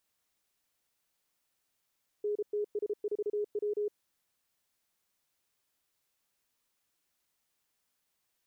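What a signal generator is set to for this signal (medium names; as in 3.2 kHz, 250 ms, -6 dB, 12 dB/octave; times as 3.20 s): Morse "NTS4W" 33 wpm 416 Hz -29 dBFS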